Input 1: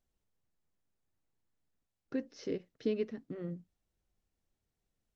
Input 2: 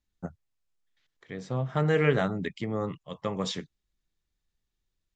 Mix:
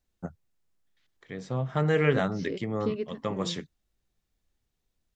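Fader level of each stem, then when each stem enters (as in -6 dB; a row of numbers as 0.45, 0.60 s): +1.5, 0.0 dB; 0.00, 0.00 s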